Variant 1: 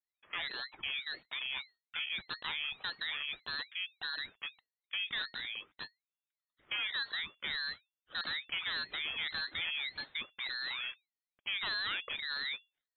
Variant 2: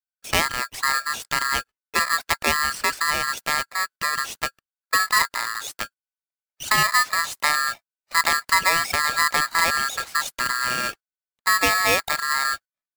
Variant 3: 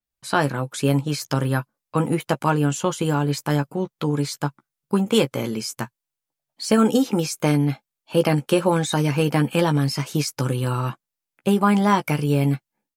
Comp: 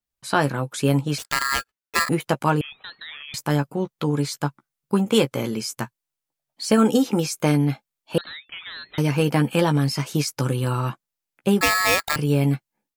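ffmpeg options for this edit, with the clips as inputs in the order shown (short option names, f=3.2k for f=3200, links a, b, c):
-filter_complex "[1:a]asplit=2[a][b];[0:a]asplit=2[c][d];[2:a]asplit=5[e][f][g][h][i];[e]atrim=end=1.182[j];[a]atrim=start=1.178:end=2.092[k];[f]atrim=start=2.088:end=2.612[l];[c]atrim=start=2.608:end=3.342[m];[g]atrim=start=3.338:end=8.182[n];[d]atrim=start=8.178:end=8.982[o];[h]atrim=start=8.978:end=11.612[p];[b]atrim=start=11.608:end=12.162[q];[i]atrim=start=12.158[r];[j][k]acrossfade=d=0.004:c1=hsin:c2=hsin[s];[s][l]acrossfade=d=0.004:c1=hsin:c2=hsin[t];[t][m]acrossfade=d=0.004:c1=hsin:c2=hsin[u];[u][n]acrossfade=d=0.004:c1=hsin:c2=hsin[v];[v][o]acrossfade=d=0.004:c1=hsin:c2=hsin[w];[w][p]acrossfade=d=0.004:c1=hsin:c2=hsin[x];[x][q]acrossfade=d=0.004:c1=hsin:c2=hsin[y];[y][r]acrossfade=d=0.004:c1=hsin:c2=hsin"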